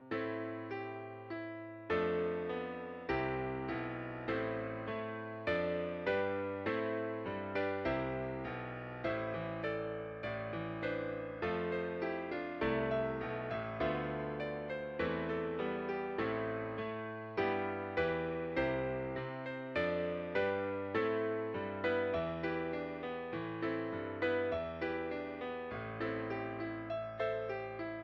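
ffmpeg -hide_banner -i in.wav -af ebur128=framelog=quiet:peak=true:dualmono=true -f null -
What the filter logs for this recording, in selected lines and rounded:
Integrated loudness:
  I:         -35.2 LUFS
  Threshold: -45.2 LUFS
Loudness range:
  LRA:         2.5 LU
  Threshold: -55.0 LUFS
  LRA low:   -36.3 LUFS
  LRA high:  -33.8 LUFS
True peak:
  Peak:      -21.1 dBFS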